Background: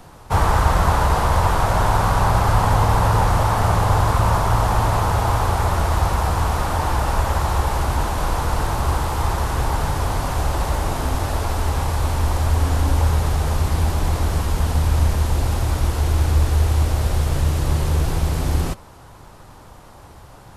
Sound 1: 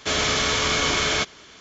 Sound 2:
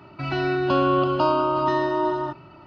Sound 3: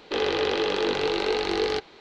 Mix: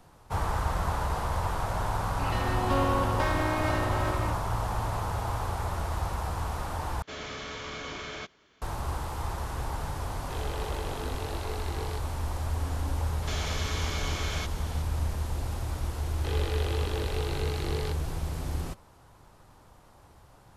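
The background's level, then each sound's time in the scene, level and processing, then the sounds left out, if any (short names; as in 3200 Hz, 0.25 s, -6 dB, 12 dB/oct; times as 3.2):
background -12.5 dB
2 add 2 -6.5 dB + minimum comb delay 3.7 ms
7.02 replace with 1 -14 dB + LPF 2400 Hz 6 dB/oct
10.19 add 3 -15.5 dB
13.22 add 1 -2.5 dB + compressor 3:1, threshold -34 dBFS
16.13 add 3 -10.5 dB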